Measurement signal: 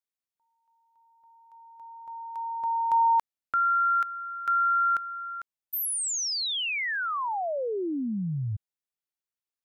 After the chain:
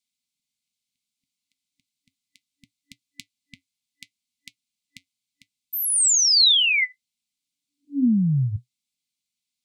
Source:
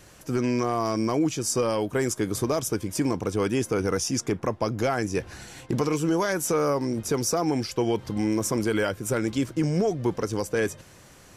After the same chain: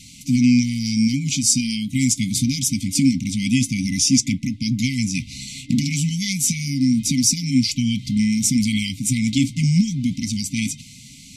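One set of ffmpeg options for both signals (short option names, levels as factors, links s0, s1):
-af "flanger=delay=3.9:depth=1.7:regen=-76:speed=0.69:shape=triangular,equalizer=f=125:t=o:w=1:g=7,equalizer=f=250:t=o:w=1:g=9,equalizer=f=500:t=o:w=1:g=6,equalizer=f=1000:t=o:w=1:g=-3,equalizer=f=2000:t=o:w=1:g=6,equalizer=f=4000:t=o:w=1:g=11,equalizer=f=8000:t=o:w=1:g=9,afftfilt=real='re*(1-between(b*sr/4096,290,2000))':imag='im*(1-between(b*sr/4096,290,2000))':win_size=4096:overlap=0.75,volume=1.78"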